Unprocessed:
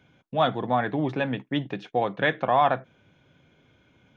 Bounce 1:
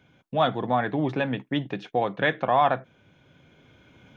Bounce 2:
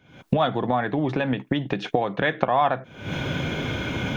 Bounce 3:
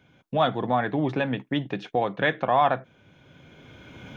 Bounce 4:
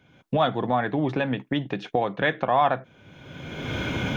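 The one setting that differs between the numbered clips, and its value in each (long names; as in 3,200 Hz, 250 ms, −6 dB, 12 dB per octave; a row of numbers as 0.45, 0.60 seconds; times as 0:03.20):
camcorder AGC, rising by: 5.2, 85, 13, 32 dB per second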